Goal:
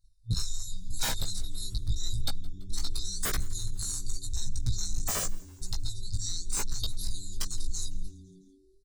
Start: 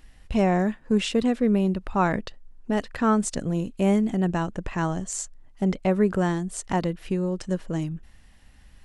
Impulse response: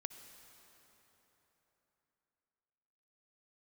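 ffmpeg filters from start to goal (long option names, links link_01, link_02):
-filter_complex "[0:a]agate=range=-34dB:threshold=-41dB:ratio=16:detection=peak,asettb=1/sr,asplit=3[link_01][link_02][link_03];[link_01]atrim=end=5.914[link_04];[link_02]atrim=start=5.91:end=6.8,asetpts=PTS-STARTPTS,afade=type=in:duration=0.004:curve=qsin,afade=type=out:start_time=0.886:duration=0.004:curve=qsin,lowpass=6900[link_05];[link_03]atrim=start=6.796[link_06];[link_04][link_05]acrossfade=duration=0.004:curve1=hsin:curve2=qsin[link_07];[link_07][link_06]acrossfade=duration=0.004:curve1=qsin:curve2=hsin,afftfilt=real='re*(1-between(b*sr/4096,110,3600))':imag='im*(1-between(b*sr/4096,110,3600))':win_size=4096:overlap=0.75,aecho=1:1:7.3:0.91,bandreject=frequency=104.5:width_type=h:width=4,bandreject=frequency=209:width_type=h:width=4,bandreject=frequency=313.5:width_type=h:width=4,bandreject=frequency=418:width_type=h:width=4,bandreject=frequency=522.5:width_type=h:width=4,bandreject=frequency=627:width_type=h:width=4,bandreject=frequency=731.5:width_type=h:width=4,bandreject=frequency=836:width_type=h:width=4,bandreject=frequency=940.5:width_type=h:width=4,bandreject=frequency=1045:width_type=h:width=4,bandreject=frequency=1149.5:width_type=h:width=4,bandreject=frequency=1254:width_type=h:width=4,bandreject=frequency=1358.5:width_type=h:width=4,bandreject=frequency=1463:width_type=h:width=4,bandreject=frequency=1567.5:width_type=h:width=4,bandreject=frequency=1672:width_type=h:width=4,bandreject=frequency=1776.5:width_type=h:width=4,bandreject=frequency=1881:width_type=h:width=4,bandreject=frequency=1985.5:width_type=h:width=4,bandreject=frequency=2090:width_type=h:width=4,bandreject=frequency=2194.5:width_type=h:width=4,bandreject=frequency=2299:width_type=h:width=4,bandreject=frequency=2403.5:width_type=h:width=4,aeval=exprs='0.119*sin(PI/2*4.47*val(0)/0.119)':channel_layout=same,acrossover=split=700|1900[link_08][link_09][link_10];[link_08]acompressor=threshold=-23dB:ratio=4[link_11];[link_10]acompressor=threshold=-28dB:ratio=4[link_12];[link_11][link_09][link_12]amix=inputs=3:normalize=0,flanger=delay=0.4:depth=1.4:regen=-32:speed=0.28:shape=triangular,acontrast=34,asoftclip=type=tanh:threshold=-15.5dB,flanger=delay=16:depth=2.8:speed=0.88,asplit=5[link_13][link_14][link_15][link_16][link_17];[link_14]adelay=167,afreqshift=-99,volume=-23.5dB[link_18];[link_15]adelay=334,afreqshift=-198,volume=-28.4dB[link_19];[link_16]adelay=501,afreqshift=-297,volume=-33.3dB[link_20];[link_17]adelay=668,afreqshift=-396,volume=-38.1dB[link_21];[link_13][link_18][link_19][link_20][link_21]amix=inputs=5:normalize=0"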